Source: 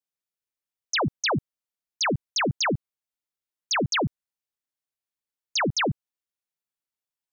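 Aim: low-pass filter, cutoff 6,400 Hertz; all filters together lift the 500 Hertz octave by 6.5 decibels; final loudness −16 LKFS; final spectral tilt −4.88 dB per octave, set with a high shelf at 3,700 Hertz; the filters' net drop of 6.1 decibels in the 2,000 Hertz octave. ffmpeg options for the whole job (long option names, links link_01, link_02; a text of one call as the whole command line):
ffmpeg -i in.wav -af "lowpass=6400,equalizer=frequency=500:width_type=o:gain=8.5,equalizer=frequency=2000:width_type=o:gain=-7.5,highshelf=frequency=3700:gain=-3.5,volume=10dB" out.wav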